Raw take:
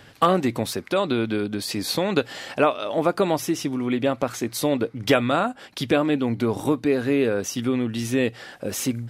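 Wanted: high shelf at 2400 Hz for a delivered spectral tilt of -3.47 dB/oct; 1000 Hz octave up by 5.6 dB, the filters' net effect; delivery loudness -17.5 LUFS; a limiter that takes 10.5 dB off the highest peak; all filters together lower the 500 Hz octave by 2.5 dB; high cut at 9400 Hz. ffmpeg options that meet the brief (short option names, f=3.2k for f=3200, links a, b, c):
-af "lowpass=9.4k,equalizer=f=500:t=o:g=-5.5,equalizer=f=1k:t=o:g=7,highshelf=f=2.4k:g=8.5,volume=6.5dB,alimiter=limit=-4dB:level=0:latency=1"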